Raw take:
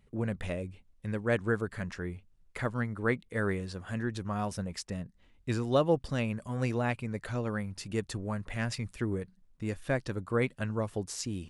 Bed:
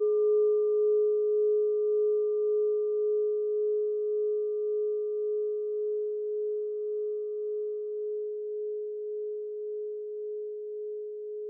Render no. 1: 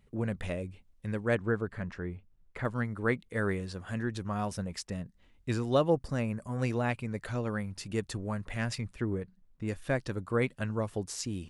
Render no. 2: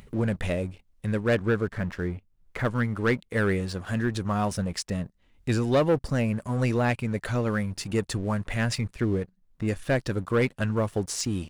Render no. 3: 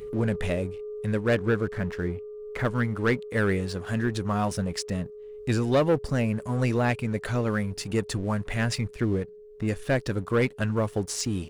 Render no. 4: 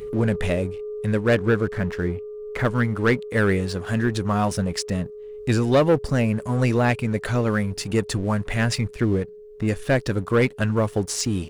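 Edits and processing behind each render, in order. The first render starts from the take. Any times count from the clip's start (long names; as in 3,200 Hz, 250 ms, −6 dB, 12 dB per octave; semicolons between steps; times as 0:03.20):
0:01.35–0:02.65: low-pass filter 1,900 Hz 6 dB per octave; 0:05.90–0:06.59: parametric band 3,300 Hz −11 dB 0.7 octaves; 0:08.81–0:09.68: high-shelf EQ 4,000 Hz −10 dB
leveller curve on the samples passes 2; upward compression, threshold −36 dBFS
mix in bed −12 dB
level +4.5 dB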